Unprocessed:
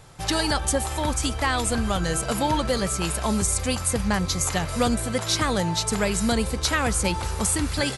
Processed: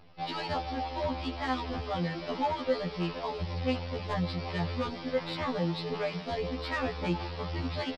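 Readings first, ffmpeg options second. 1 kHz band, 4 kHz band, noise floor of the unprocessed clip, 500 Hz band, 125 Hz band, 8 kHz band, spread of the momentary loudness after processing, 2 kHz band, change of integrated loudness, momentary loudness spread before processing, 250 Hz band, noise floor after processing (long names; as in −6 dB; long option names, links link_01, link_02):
−7.0 dB, −11.5 dB, −31 dBFS, −5.5 dB, −7.5 dB, below −30 dB, 3 LU, −10.0 dB, −9.5 dB, 2 LU, −8.5 dB, −41 dBFS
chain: -af "lowpass=2600,aphaser=in_gain=1:out_gain=1:delay=4.3:decay=0.36:speed=1.7:type=sinusoidal,acontrast=35,highpass=frequency=170:poles=1,aecho=1:1:151|302|453|604|755:0.1|0.06|0.036|0.0216|0.013,aresample=11025,acrusher=bits=6:dc=4:mix=0:aa=0.000001,aresample=44100,equalizer=frequency=1500:width_type=o:width=0.55:gain=-8,asoftclip=type=tanh:threshold=-14dB,afftfilt=real='re*2*eq(mod(b,4),0)':imag='im*2*eq(mod(b,4),0)':win_size=2048:overlap=0.75,volume=-7dB"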